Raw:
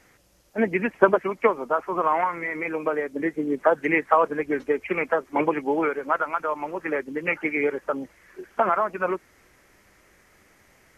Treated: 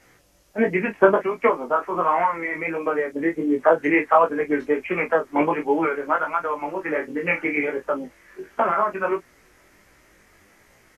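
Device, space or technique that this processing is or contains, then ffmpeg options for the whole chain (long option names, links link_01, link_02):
double-tracked vocal: -filter_complex "[0:a]asplit=2[link_01][link_02];[link_02]adelay=24,volume=-8.5dB[link_03];[link_01][link_03]amix=inputs=2:normalize=0,flanger=delay=16.5:depth=4.5:speed=1.4,asettb=1/sr,asplit=3[link_04][link_05][link_06];[link_04]atrim=end=6.994[link_07];[link_05]atrim=start=6.99:end=7.58,asetpts=PTS-STARTPTS,afade=type=in:duration=0.004:curve=qsin,afade=type=out:start_time=0.586:duration=0.004:curve=qsin,asplit=2[link_08][link_09];[link_09]adelay=28,volume=-8dB[link_10];[link_08][link_10]amix=inputs=2:normalize=0,atrim=end_sample=26019[link_11];[link_06]atrim=start=7.576[link_12];[link_07][link_11]acrossfade=duration=0.004:curve1=hsin:curve2=qsin[link_13];[link_13][link_12]acrossfade=duration=0.004:curve1=qsin:curve2=hsin,volume=4.5dB"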